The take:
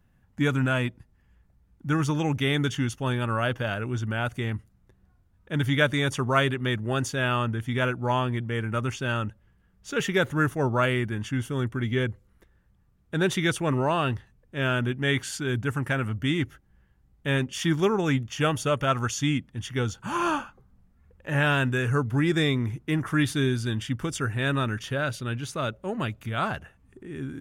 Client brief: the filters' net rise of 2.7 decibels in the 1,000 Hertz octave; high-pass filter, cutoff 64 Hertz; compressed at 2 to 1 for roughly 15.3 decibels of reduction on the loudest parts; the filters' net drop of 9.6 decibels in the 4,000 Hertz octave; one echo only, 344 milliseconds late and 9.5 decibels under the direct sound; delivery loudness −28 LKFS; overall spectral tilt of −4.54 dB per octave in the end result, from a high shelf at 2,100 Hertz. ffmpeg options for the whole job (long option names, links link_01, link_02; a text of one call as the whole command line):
ffmpeg -i in.wav -af "highpass=64,equalizer=frequency=1000:width_type=o:gain=6,highshelf=frequency=2100:gain=-7.5,equalizer=frequency=4000:width_type=o:gain=-6,acompressor=threshold=-47dB:ratio=2,aecho=1:1:344:0.335,volume=12dB" out.wav